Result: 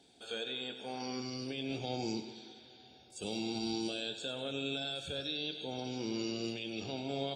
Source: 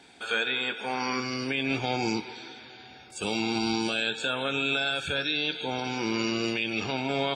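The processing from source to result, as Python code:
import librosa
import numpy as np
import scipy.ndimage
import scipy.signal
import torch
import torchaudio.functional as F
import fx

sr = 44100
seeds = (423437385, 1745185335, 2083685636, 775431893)

y = fx.band_shelf(x, sr, hz=1500.0, db=-12.0, octaves=1.7)
y = fx.echo_feedback(y, sr, ms=95, feedback_pct=46, wet_db=-12)
y = y * librosa.db_to_amplitude(-8.0)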